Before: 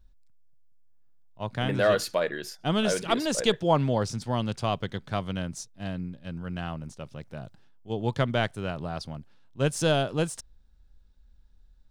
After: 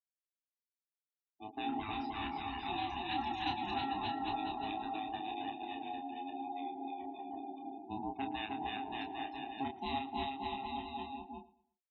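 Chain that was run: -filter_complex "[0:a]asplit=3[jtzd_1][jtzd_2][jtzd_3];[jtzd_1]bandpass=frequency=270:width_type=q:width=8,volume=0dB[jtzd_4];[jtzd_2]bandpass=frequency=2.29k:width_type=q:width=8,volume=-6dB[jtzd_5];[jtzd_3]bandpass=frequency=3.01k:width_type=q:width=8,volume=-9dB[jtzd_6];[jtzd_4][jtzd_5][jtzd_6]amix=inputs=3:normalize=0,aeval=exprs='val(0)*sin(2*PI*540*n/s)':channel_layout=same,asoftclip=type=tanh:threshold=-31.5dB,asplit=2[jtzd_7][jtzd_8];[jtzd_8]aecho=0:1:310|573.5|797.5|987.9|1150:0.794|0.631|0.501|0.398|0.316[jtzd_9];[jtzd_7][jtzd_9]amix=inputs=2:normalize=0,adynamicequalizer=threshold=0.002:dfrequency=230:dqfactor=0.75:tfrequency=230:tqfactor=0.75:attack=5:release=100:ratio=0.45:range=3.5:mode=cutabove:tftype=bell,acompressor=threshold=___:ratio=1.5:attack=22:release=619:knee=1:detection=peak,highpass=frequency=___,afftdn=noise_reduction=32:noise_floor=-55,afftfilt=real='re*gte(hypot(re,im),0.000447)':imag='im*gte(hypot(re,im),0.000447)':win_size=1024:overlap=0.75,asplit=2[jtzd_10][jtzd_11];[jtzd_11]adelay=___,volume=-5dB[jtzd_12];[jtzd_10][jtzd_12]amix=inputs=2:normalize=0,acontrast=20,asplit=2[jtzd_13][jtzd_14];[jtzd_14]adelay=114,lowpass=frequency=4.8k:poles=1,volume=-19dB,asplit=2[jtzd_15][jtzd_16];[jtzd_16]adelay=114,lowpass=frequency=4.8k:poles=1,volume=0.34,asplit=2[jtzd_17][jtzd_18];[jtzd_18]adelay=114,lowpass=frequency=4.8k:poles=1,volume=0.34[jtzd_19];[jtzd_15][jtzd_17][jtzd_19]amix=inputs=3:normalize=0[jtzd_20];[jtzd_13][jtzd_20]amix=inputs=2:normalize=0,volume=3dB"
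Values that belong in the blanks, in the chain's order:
-49dB, 43, 29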